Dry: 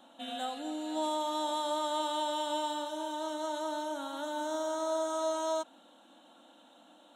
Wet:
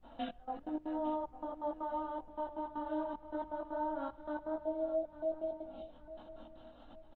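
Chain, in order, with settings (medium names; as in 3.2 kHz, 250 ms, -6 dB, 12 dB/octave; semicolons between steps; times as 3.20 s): 4.59–5.90 s: spectral selection erased 870–2100 Hz; low-pass that closes with the level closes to 1.2 kHz, closed at -32.5 dBFS; hum notches 50/100 Hz; gate -57 dBFS, range -58 dB; treble shelf 4.4 kHz -12 dB, from 2.58 s -6.5 dB; compression 16:1, threshold -44 dBFS, peak gain reduction 14.5 dB; trance gate "xxx..x.x.x" 158 bpm -24 dB; added noise brown -72 dBFS; chorus voices 6, 0.67 Hz, delay 19 ms, depth 3.1 ms; distance through air 240 m; feedback delay 853 ms, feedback 38%, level -14.5 dB; trim +13.5 dB; Opus 32 kbps 48 kHz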